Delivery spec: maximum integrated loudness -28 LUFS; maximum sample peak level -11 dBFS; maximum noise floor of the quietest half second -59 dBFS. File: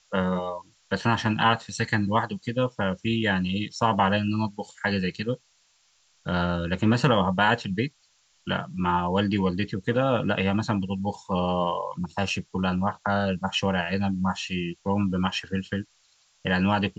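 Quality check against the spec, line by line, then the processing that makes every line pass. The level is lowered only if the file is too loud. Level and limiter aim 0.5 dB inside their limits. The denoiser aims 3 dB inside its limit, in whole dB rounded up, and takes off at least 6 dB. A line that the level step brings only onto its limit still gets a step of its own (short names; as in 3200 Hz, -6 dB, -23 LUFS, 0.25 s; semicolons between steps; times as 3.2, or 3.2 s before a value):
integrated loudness -26.0 LUFS: fail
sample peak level -6.5 dBFS: fail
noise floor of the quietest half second -65 dBFS: OK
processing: gain -2.5 dB; limiter -11.5 dBFS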